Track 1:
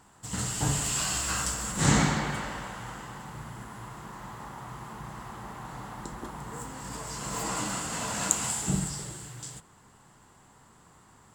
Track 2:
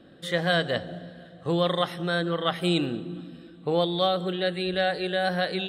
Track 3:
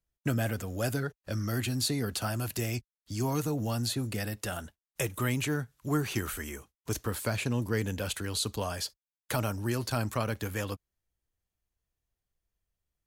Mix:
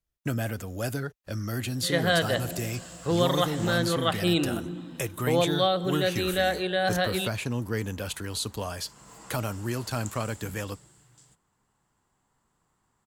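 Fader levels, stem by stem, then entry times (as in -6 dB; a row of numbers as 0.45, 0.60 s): -16.5, 0.0, 0.0 dB; 1.75, 1.60, 0.00 s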